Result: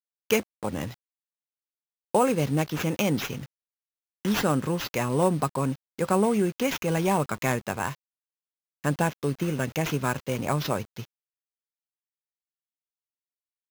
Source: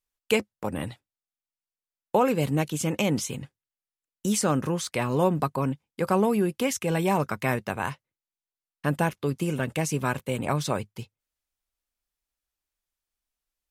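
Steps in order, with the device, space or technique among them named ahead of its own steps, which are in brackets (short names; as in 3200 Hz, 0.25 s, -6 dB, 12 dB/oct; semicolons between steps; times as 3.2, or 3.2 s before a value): early 8-bit sampler (sample-rate reducer 9000 Hz, jitter 0%; bit-crush 8-bit)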